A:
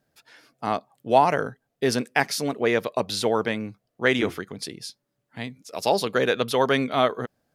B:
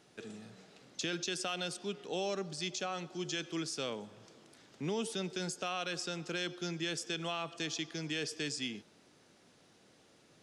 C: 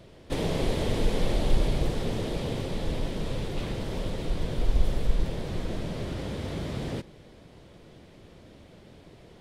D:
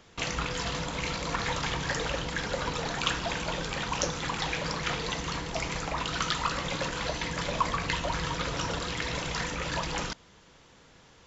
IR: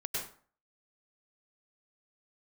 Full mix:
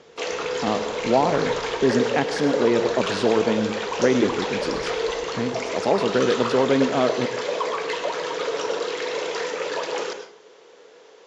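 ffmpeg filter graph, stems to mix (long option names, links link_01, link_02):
-filter_complex "[0:a]equalizer=frequency=270:width=0.4:gain=14.5,acompressor=threshold=-32dB:ratio=1.5,volume=-2dB,asplit=2[link_01][link_02];[link_02]volume=-11.5dB[link_03];[1:a]acompressor=threshold=-42dB:ratio=6,aeval=exprs='(mod(119*val(0)+1,2)-1)/119':channel_layout=same,volume=-10.5dB[link_04];[2:a]highpass=46,volume=-18.5dB[link_05];[3:a]asoftclip=type=tanh:threshold=-23.5dB,highpass=frequency=440:width_type=q:width=4.9,volume=0dB,asplit=2[link_06][link_07];[link_07]volume=-7dB[link_08];[4:a]atrim=start_sample=2205[link_09];[link_03][link_08]amix=inputs=2:normalize=0[link_10];[link_10][link_09]afir=irnorm=-1:irlink=0[link_11];[link_01][link_04][link_05][link_06][link_11]amix=inputs=5:normalize=0,lowpass=frequency=7300:width=0.5412,lowpass=frequency=7300:width=1.3066"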